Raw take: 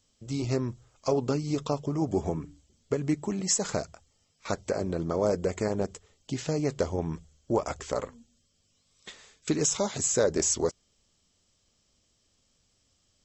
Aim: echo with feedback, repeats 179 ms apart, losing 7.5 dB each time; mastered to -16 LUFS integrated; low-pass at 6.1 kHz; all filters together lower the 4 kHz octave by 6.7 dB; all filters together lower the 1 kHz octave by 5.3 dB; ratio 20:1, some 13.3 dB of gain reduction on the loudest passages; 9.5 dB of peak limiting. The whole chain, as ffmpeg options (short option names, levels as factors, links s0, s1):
-af "lowpass=6100,equalizer=f=1000:t=o:g=-7,equalizer=f=4000:t=o:g=-7.5,acompressor=threshold=0.0178:ratio=20,alimiter=level_in=2.99:limit=0.0631:level=0:latency=1,volume=0.335,aecho=1:1:179|358|537|716|895:0.422|0.177|0.0744|0.0312|0.0131,volume=25.1"